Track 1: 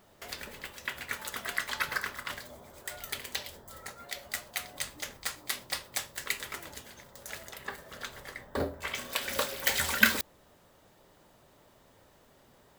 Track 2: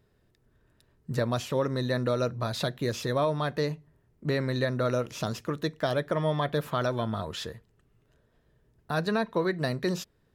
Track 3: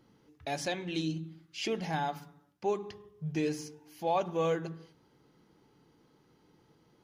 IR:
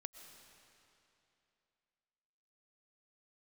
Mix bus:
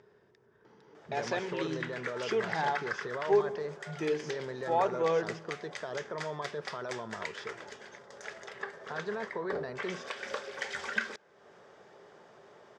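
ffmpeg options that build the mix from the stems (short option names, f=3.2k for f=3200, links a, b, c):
-filter_complex "[0:a]acompressor=threshold=-41dB:ratio=2,bandreject=f=950:w=7.1,adelay=950,volume=1dB,asplit=2[a][b];[b]volume=-23dB[c];[1:a]alimiter=limit=-23dB:level=0:latency=1:release=22,volume=-8dB[d];[2:a]adelay=650,volume=-1dB[e];[3:a]atrim=start_sample=2205[f];[c][f]afir=irnorm=-1:irlink=0[g];[a][d][e][g]amix=inputs=4:normalize=0,acompressor=mode=upward:threshold=-50dB:ratio=2.5,highpass=190,equalizer=f=280:t=q:w=4:g=-9,equalizer=f=410:t=q:w=4:g=9,equalizer=f=940:t=q:w=4:g=6,equalizer=f=1.6k:t=q:w=4:g=4,equalizer=f=2.8k:t=q:w=4:g=-4,equalizer=f=4.1k:t=q:w=4:g=-8,lowpass=f=5.7k:w=0.5412,lowpass=f=5.7k:w=1.3066"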